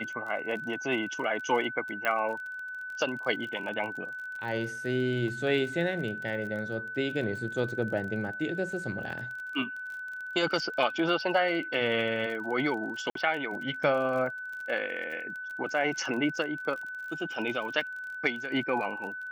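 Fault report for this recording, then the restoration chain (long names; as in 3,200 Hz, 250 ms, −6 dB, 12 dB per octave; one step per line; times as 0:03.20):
surface crackle 30 per second −37 dBFS
whistle 1,500 Hz −36 dBFS
0:02.05: click −16 dBFS
0:13.10–0:13.15: drop-out 53 ms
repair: click removal
notch filter 1,500 Hz, Q 30
repair the gap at 0:13.10, 53 ms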